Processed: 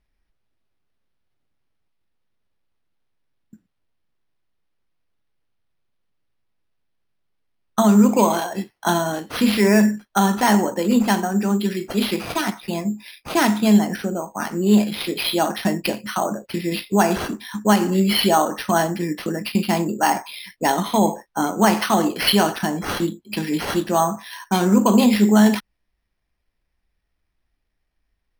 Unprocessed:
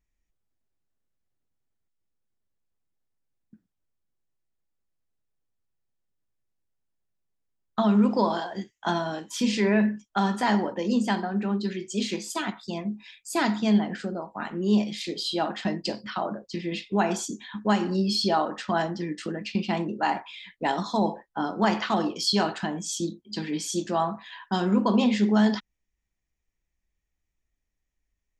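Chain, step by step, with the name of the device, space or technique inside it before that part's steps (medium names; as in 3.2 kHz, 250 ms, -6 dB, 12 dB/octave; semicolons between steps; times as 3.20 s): crushed at another speed (playback speed 0.5×; sample-and-hold 12×; playback speed 2×); trim +7 dB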